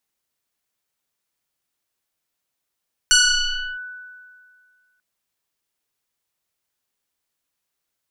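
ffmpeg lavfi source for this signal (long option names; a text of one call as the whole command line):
ffmpeg -f lavfi -i "aevalsrc='0.335*pow(10,-3*t/2.03)*sin(2*PI*1490*t+4.5*clip(1-t/0.67,0,1)*sin(2*PI*0.99*1490*t))':duration=1.89:sample_rate=44100" out.wav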